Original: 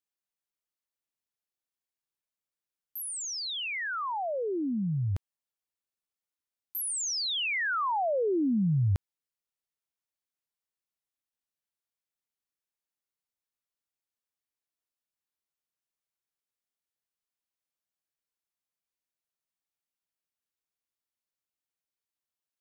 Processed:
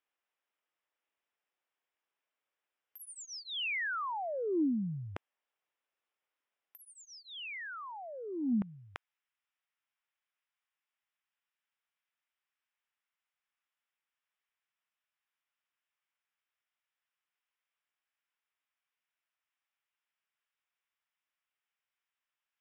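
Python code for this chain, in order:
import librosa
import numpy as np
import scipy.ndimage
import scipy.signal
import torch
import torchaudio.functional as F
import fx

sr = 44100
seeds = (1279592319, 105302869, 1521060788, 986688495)

y = fx.highpass(x, sr, hz=fx.steps((0.0, 430.0), (8.62, 1100.0)), slope=12)
y = fx.over_compress(y, sr, threshold_db=-37.0, ratio=-0.5)
y = scipy.signal.savgol_filter(y, 25, 4, mode='constant')
y = y * librosa.db_to_amplitude(4.0)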